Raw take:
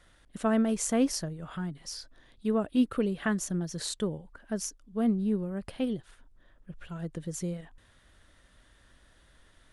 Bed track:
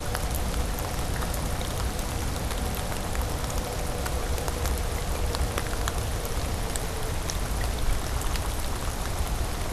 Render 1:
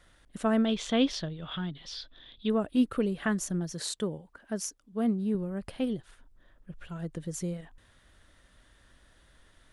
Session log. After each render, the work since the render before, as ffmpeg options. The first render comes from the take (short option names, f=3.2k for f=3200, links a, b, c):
-filter_complex "[0:a]asettb=1/sr,asplit=3[a][b][c];[a]atrim=end=0.654[d];[b]atrim=start=0.65:end=2.5,asetpts=PTS-STARTPTS,afade=t=in:d=0.004:c=qsin,afade=t=out:st=1.846:d=0.004:c=qsin,lowpass=f=3.5k:t=q:w=7.6[e];[c]atrim=start=2.496[f];[d][e]acrossfade=d=0.004:c1=hsin:c2=qsin[g];[g][f]acrossfade=d=0.004:c1=qsin:c2=hsin,asettb=1/sr,asplit=3[h][i][j];[h]atrim=end=3.734[k];[i]atrim=start=3.73:end=5.35,asetpts=PTS-STARTPTS,afade=t=in:d=0.004:c=qsin,afade=t=out:st=1.616:d=0.004:c=qsin,highpass=f=130:p=1[l];[j]atrim=start=5.346[m];[k][l]acrossfade=d=0.004:c1=hsin:c2=qsin[n];[n][m]acrossfade=d=0.004:c1=qsin:c2=hsin"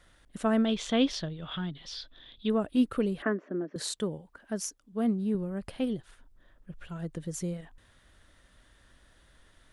-filter_complex "[0:a]asettb=1/sr,asplit=3[a][b][c];[a]atrim=end=3.224[d];[b]atrim=start=3.22:end=3.76,asetpts=PTS-STARTPTS,afade=t=in:d=0.004:c=qsin,afade=t=out:st=0.536:d=0.004:c=qsin,highpass=f=240:w=0.5412,highpass=f=240:w=1.3066,equalizer=f=280:t=q:w=4:g=10,equalizer=f=400:t=q:w=4:g=7,equalizer=f=590:t=q:w=4:g=5,equalizer=f=840:t=q:w=4:g=-6,lowpass=f=2k:w=0.5412,lowpass=f=2k:w=1.3066[e];[c]atrim=start=3.756[f];[d][e]acrossfade=d=0.004:c1=hsin:c2=qsin[g];[g][f]acrossfade=d=0.004:c1=qsin:c2=hsin"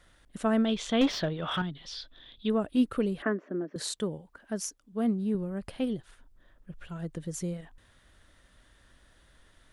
-filter_complex "[0:a]asettb=1/sr,asplit=3[a][b][c];[a]atrim=end=1.014[d];[b]atrim=start=1.01:end=1.62,asetpts=PTS-STARTPTS,afade=t=in:d=0.004:c=qsin,afade=t=out:st=0.606:d=0.004:c=qsin,asplit=2[e][f];[f]highpass=f=720:p=1,volume=22dB,asoftclip=type=tanh:threshold=-14.5dB[g];[e][g]amix=inputs=2:normalize=0,lowpass=f=1.2k:p=1,volume=-6dB[h];[c]atrim=start=1.616[i];[d][h]acrossfade=d=0.004:c1=hsin:c2=qsin[j];[j][i]acrossfade=d=0.004:c1=qsin:c2=hsin"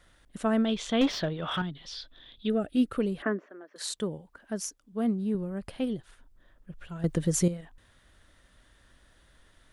-filter_complex "[0:a]asettb=1/sr,asplit=3[a][b][c];[a]atrim=end=2.474[d];[b]atrim=start=2.47:end=2.88,asetpts=PTS-STARTPTS,afade=t=in:d=0.004:c=qsin,afade=t=out:st=0.406:d=0.004:c=qsin,asuperstop=centerf=1000:order=8:qfactor=2.8[e];[c]atrim=start=2.876[f];[d][e]acrossfade=d=0.004:c1=hsin:c2=qsin[g];[g][f]acrossfade=d=0.004:c1=qsin:c2=hsin,asettb=1/sr,asplit=3[h][i][j];[h]atrim=end=3.464[k];[i]atrim=start=3.46:end=3.9,asetpts=PTS-STARTPTS,afade=t=in:d=0.004:c=qsin,afade=t=out:st=0.436:d=0.004:c=qsin,highpass=810[l];[j]atrim=start=3.896[m];[k][l]acrossfade=d=0.004:c1=hsin:c2=qsin[n];[n][m]acrossfade=d=0.004:c1=qsin:c2=hsin,asplit=3[o][p][q];[o]atrim=end=7.042[r];[p]atrim=start=7.038:end=7.482,asetpts=PTS-STARTPTS,volume=10dB[s];[q]atrim=start=7.478[t];[r][s]acrossfade=d=0.004:c1=hsin:c2=hsin[u];[u][t]acrossfade=d=0.004:c1=hsin:c2=hsin"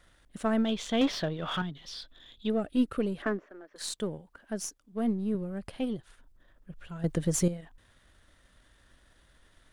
-af "aeval=exprs='if(lt(val(0),0),0.708*val(0),val(0))':c=same"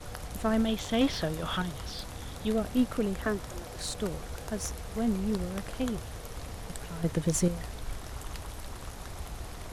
-filter_complex "[1:a]volume=-11.5dB[a];[0:a][a]amix=inputs=2:normalize=0"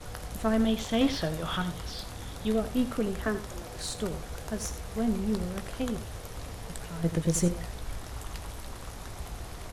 -filter_complex "[0:a]asplit=2[a][b];[b]adelay=18,volume=-12dB[c];[a][c]amix=inputs=2:normalize=0,aecho=1:1:84:0.224"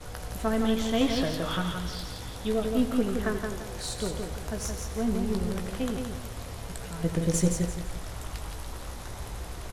-filter_complex "[0:a]asplit=2[a][b];[b]adelay=16,volume=-11dB[c];[a][c]amix=inputs=2:normalize=0,aecho=1:1:170|340|510|680:0.562|0.186|0.0612|0.0202"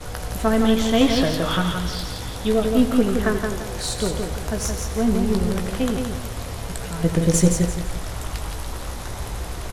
-af "volume=8dB"